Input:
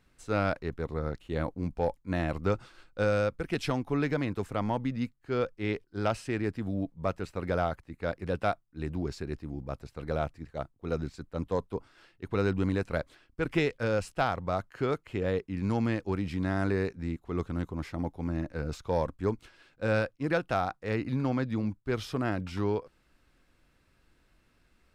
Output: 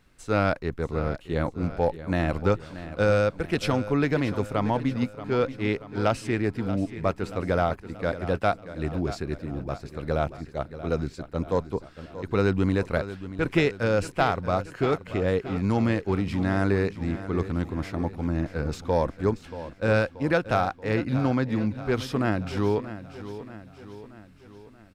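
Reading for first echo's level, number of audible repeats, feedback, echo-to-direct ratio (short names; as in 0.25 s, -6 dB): -13.5 dB, 5, 54%, -12.0 dB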